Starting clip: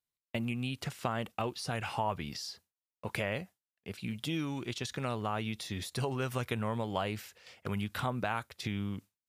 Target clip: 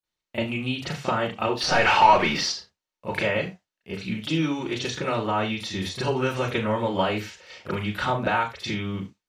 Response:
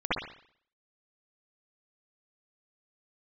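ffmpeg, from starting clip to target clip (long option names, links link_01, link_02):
-filter_complex "[0:a]asettb=1/sr,asplit=3[link_01][link_02][link_03];[link_01]atrim=end=1.574[link_04];[link_02]atrim=start=1.57:end=2.48,asetpts=PTS-STARTPTS,afade=type=in:duration=0.004:curve=qsin,afade=type=out:start_time=0.906:duration=0.004:curve=qsin,asplit=2[link_05][link_06];[link_06]highpass=frequency=720:poles=1,volume=23dB,asoftclip=type=tanh:threshold=-18dB[link_07];[link_05][link_07]amix=inputs=2:normalize=0,lowpass=frequency=2400:poles=1,volume=-6dB[link_08];[link_03]atrim=start=2.476[link_09];[link_04][link_08]acrossfade=duration=0.004:curve1=hsin:curve2=qsin[link_10];[link_10][link_09]acrossfade=duration=0.004:curve1=qsin:curve2=hsin[link_11];[1:a]atrim=start_sample=2205,afade=type=out:start_time=0.3:duration=0.01,atrim=end_sample=13671,asetrate=79380,aresample=44100[link_12];[link_11][link_12]afir=irnorm=-1:irlink=0,volume=4dB" -ar 44100 -c:a libmp3lame -b:a 128k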